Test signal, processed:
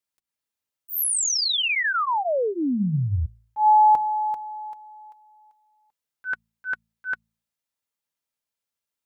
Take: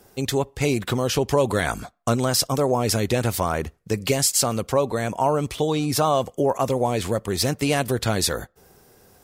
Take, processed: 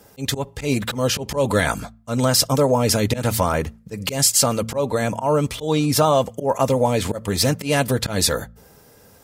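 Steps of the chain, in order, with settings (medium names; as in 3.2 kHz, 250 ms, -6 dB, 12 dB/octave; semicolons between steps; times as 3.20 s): comb of notches 370 Hz; slow attack 125 ms; de-hum 55.9 Hz, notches 4; trim +5 dB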